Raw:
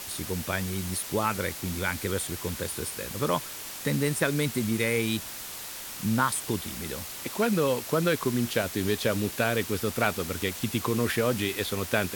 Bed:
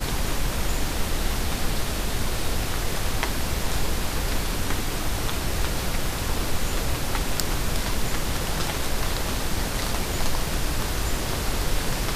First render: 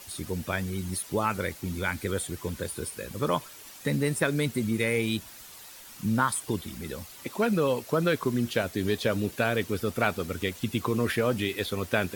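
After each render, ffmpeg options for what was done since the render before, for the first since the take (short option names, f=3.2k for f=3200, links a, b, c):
-af "afftdn=nr=10:nf=-39"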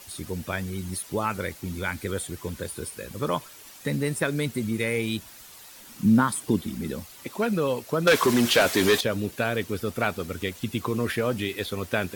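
-filter_complex "[0:a]asettb=1/sr,asplit=3[a][b][c];[a]atrim=end=5.764[d];[b]atrim=start=5.76:end=7,asetpts=PTS-STARTPTS,afade=t=in:d=0.004:c=qsin,afade=t=out:st=1.236:d=0.004:c=qsin,equalizer=f=230:t=o:w=1.4:g=9.5[e];[c]atrim=start=6.996[f];[d][e]acrossfade=d=0.004:c1=hsin:c2=qsin[g];[g][f]acrossfade=d=0.004:c1=qsin:c2=hsin,asettb=1/sr,asplit=3[h][i][j];[h]atrim=end=8.074[k];[i]atrim=start=8.07:end=9.01,asetpts=PTS-STARTPTS,afade=t=in:d=0.004:c=qsin,afade=t=out:st=0.936:d=0.004:c=qsin,asplit=2[l][m];[m]highpass=f=720:p=1,volume=24dB,asoftclip=type=tanh:threshold=-9.5dB[n];[l][n]amix=inputs=2:normalize=0,lowpass=f=7.7k:p=1,volume=-6dB[o];[j]atrim=start=9.006[p];[k][o]acrossfade=d=0.004:c1=hsin:c2=qsin[q];[q][p]acrossfade=d=0.004:c1=qsin:c2=hsin"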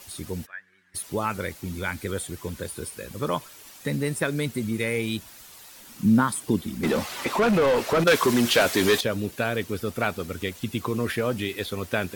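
-filter_complex "[0:a]asplit=3[a][b][c];[a]afade=t=out:st=0.45:d=0.02[d];[b]bandpass=f=1.7k:t=q:w=9.3,afade=t=in:st=0.45:d=0.02,afade=t=out:st=0.94:d=0.02[e];[c]afade=t=in:st=0.94:d=0.02[f];[d][e][f]amix=inputs=3:normalize=0,asettb=1/sr,asplit=3[g][h][i];[g]atrim=end=6.834[j];[h]atrim=start=6.83:end=8.04,asetpts=PTS-STARTPTS,afade=t=in:d=0.004:c=qsin,afade=t=out:st=1.206:d=0.004:c=qsin,asplit=2[k][l];[l]highpass=f=720:p=1,volume=29dB,asoftclip=type=tanh:threshold=-13dB[m];[k][m]amix=inputs=2:normalize=0,lowpass=f=1.7k:p=1,volume=-6dB[n];[i]atrim=start=8.036[o];[j][n]acrossfade=d=0.004:c1=hsin:c2=qsin[p];[p][o]acrossfade=d=0.004:c1=qsin:c2=hsin"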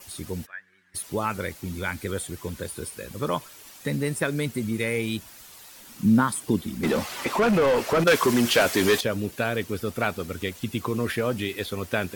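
-af "adynamicequalizer=threshold=0.00316:dfrequency=3800:dqfactor=6.6:tfrequency=3800:tqfactor=6.6:attack=5:release=100:ratio=0.375:range=2:mode=cutabove:tftype=bell"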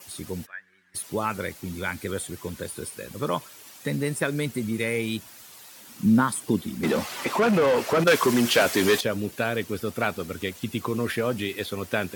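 -af "highpass=96"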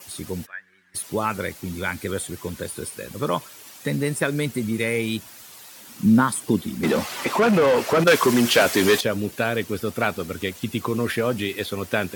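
-af "volume=3dB"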